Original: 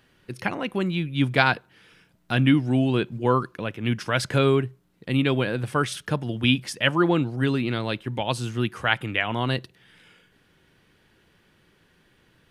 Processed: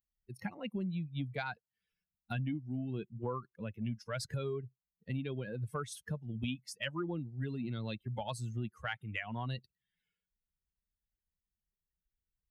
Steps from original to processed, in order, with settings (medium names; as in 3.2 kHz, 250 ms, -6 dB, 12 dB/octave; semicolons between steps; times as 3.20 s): expander on every frequency bin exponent 2; high-pass 97 Hz 6 dB/octave; bass shelf 290 Hz +9 dB; compression 12:1, threshold -36 dBFS, peak gain reduction 24.5 dB; transient shaper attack -2 dB, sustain +2 dB; trim +2 dB